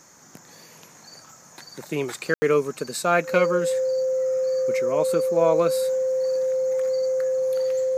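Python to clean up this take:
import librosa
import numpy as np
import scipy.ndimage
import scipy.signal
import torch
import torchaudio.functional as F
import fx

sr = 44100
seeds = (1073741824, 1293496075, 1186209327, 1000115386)

y = fx.notch(x, sr, hz=520.0, q=30.0)
y = fx.fix_ambience(y, sr, seeds[0], print_start_s=0.0, print_end_s=0.5, start_s=2.34, end_s=2.42)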